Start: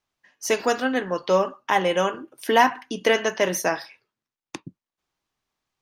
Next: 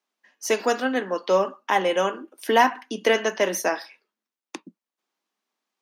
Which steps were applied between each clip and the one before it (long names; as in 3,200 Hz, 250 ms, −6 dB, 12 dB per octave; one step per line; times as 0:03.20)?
elliptic high-pass filter 200 Hz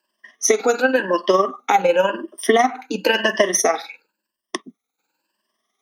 rippled gain that drifts along the octave scale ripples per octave 1.3, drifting +0.94 Hz, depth 19 dB
downward compressor 12 to 1, threshold −17 dBFS, peak gain reduction 9.5 dB
amplitude tremolo 20 Hz, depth 51%
level +7.5 dB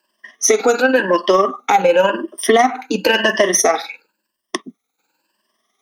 in parallel at −0.5 dB: brickwall limiter −11 dBFS, peak gain reduction 9 dB
on the sum: soft clipping −1.5 dBFS, distortion −23 dB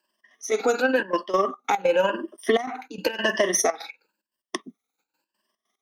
gate pattern "xx.x.xxxxx.x." 146 BPM −12 dB
level −7.5 dB